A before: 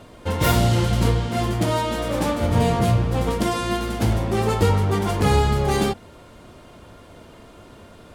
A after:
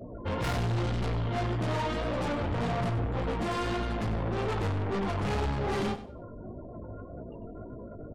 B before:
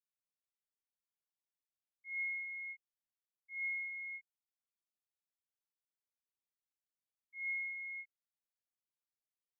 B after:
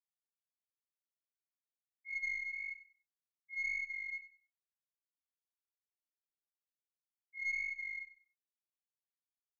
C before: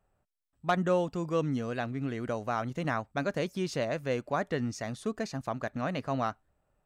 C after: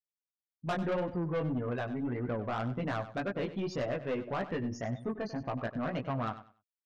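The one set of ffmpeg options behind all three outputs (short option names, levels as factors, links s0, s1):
-filter_complex "[0:a]afftfilt=real='re*gte(hypot(re,im),0.0141)':imag='im*gte(hypot(re,im),0.0141)':win_size=1024:overlap=0.75,aemphasis=mode=reproduction:type=50fm,asplit=2[s0][s1];[s1]acompressor=threshold=0.0141:ratio=4,volume=1.26[s2];[s0][s2]amix=inputs=2:normalize=0,flanger=delay=15.5:depth=4.4:speed=1.8,aeval=exprs='(tanh(25.1*val(0)+0.15)-tanh(0.15))/25.1':c=same,asplit=2[s3][s4];[s4]aecho=0:1:96|192|288:0.211|0.0486|0.0112[s5];[s3][s5]amix=inputs=2:normalize=0"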